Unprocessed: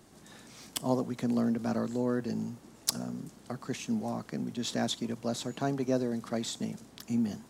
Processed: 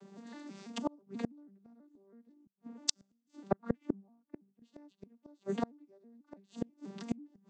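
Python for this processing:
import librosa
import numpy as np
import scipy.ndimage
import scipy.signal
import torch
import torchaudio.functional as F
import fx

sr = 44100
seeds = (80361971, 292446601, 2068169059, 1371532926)

y = fx.vocoder_arp(x, sr, chord='minor triad', root=55, every_ms=163)
y = scipy.signal.sosfilt(scipy.signal.butter(2, 160.0, 'highpass', fs=sr, output='sos'), y)
y = fx.rider(y, sr, range_db=3, speed_s=2.0)
y = fx.gate_flip(y, sr, shuts_db=-32.0, range_db=-38)
y = fx.band_widen(y, sr, depth_pct=100, at=(2.47, 4.62))
y = y * 10.0 ** (11.0 / 20.0)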